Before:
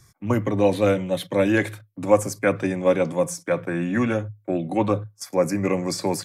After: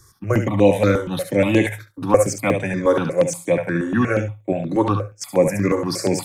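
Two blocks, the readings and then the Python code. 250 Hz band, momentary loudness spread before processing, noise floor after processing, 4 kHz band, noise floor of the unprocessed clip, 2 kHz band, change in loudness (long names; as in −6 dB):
+3.0 dB, 7 LU, −52 dBFS, +2.5 dB, −59 dBFS, +3.0 dB, +3.5 dB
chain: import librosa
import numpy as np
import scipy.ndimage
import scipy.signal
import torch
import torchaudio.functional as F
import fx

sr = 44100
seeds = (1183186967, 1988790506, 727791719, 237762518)

y = fx.echo_thinned(x, sr, ms=70, feedback_pct=16, hz=530.0, wet_db=-5)
y = fx.phaser_held(y, sr, hz=8.4, low_hz=680.0, high_hz=5100.0)
y = F.gain(torch.from_numpy(y), 6.0).numpy()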